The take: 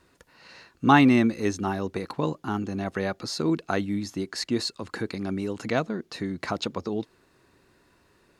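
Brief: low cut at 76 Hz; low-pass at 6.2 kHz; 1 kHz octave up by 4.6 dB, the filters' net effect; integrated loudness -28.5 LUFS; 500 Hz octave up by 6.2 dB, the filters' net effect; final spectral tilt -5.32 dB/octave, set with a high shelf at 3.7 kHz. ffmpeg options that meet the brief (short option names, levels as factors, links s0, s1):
-af "highpass=76,lowpass=6200,equalizer=f=500:t=o:g=7.5,equalizer=f=1000:t=o:g=3.5,highshelf=f=3700:g=-5,volume=0.596"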